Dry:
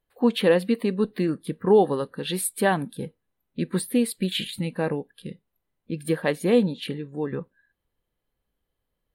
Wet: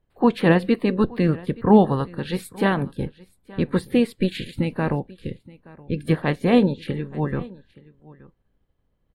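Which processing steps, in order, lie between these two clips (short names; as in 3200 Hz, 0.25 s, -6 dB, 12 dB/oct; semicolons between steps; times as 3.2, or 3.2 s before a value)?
spectral limiter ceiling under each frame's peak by 16 dB; RIAA curve playback; echo 0.873 s -22 dB; gain -1 dB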